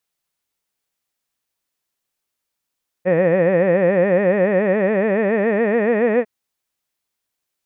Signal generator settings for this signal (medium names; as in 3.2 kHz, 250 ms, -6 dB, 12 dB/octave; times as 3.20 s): formant-synthesis vowel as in head, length 3.20 s, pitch 172 Hz, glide +5 st, vibrato 7.1 Hz, vibrato depth 1.5 st